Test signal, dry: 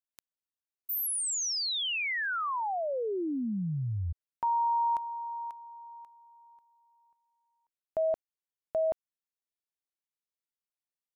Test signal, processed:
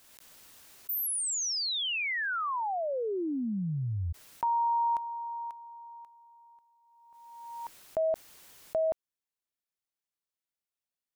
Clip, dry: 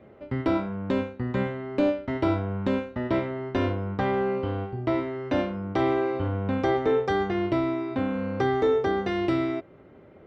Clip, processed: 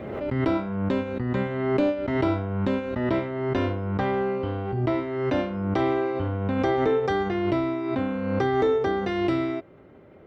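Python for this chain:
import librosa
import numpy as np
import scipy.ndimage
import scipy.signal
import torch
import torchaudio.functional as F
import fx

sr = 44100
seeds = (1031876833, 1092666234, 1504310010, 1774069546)

y = fx.pre_swell(x, sr, db_per_s=34.0)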